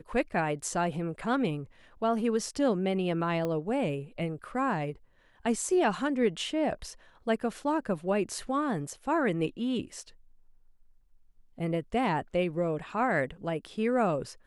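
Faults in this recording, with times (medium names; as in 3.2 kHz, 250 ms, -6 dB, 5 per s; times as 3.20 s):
3.45 s: pop -20 dBFS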